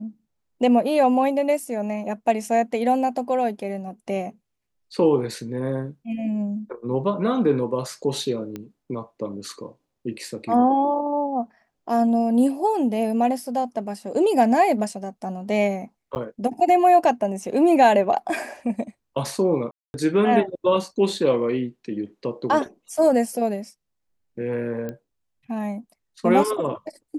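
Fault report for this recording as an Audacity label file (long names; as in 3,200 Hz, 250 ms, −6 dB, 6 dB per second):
8.560000	8.560000	click −19 dBFS
16.150000	16.160000	drop-out 9.8 ms
19.710000	19.940000	drop-out 231 ms
24.890000	24.890000	click −19 dBFS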